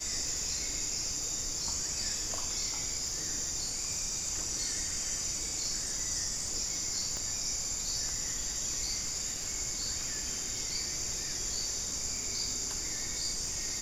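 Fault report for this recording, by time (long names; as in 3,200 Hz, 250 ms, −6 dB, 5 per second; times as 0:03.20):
surface crackle 120 per second −42 dBFS
0:07.17: click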